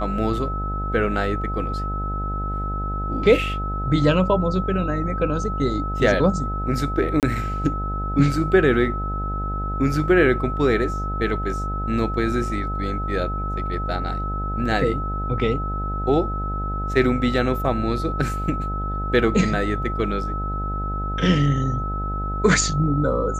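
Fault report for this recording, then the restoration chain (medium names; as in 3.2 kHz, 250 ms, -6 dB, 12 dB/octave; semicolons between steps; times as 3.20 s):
buzz 50 Hz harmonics 17 -27 dBFS
whine 1.3 kHz -28 dBFS
7.20–7.23 s: dropout 28 ms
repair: band-stop 1.3 kHz, Q 30; de-hum 50 Hz, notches 17; interpolate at 7.20 s, 28 ms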